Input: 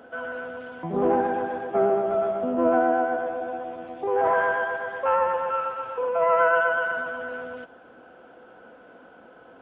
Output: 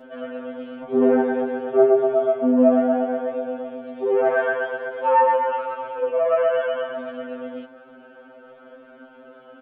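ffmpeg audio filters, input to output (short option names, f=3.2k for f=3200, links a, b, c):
-af "aecho=1:1:4.4:0.61,afftfilt=real='re*2.45*eq(mod(b,6),0)':imag='im*2.45*eq(mod(b,6),0)':win_size=2048:overlap=0.75,volume=3.5dB"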